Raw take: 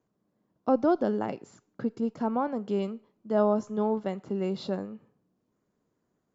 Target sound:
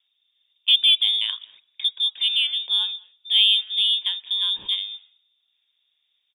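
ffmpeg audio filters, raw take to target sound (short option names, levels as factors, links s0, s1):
-filter_complex "[0:a]asplit=2[s0][s1];[s1]adelay=200,highpass=300,lowpass=3400,asoftclip=type=hard:threshold=0.0944,volume=0.0708[s2];[s0][s2]amix=inputs=2:normalize=0,lowpass=f=3200:t=q:w=0.5098,lowpass=f=3200:t=q:w=0.6013,lowpass=f=3200:t=q:w=0.9,lowpass=f=3200:t=q:w=2.563,afreqshift=-3800,aeval=exprs='0.237*(cos(1*acos(clip(val(0)/0.237,-1,1)))-cos(1*PI/2))+0.00168*(cos(3*acos(clip(val(0)/0.237,-1,1)))-cos(3*PI/2))+0.00335*(cos(7*acos(clip(val(0)/0.237,-1,1)))-cos(7*PI/2))':c=same,volume=2.11"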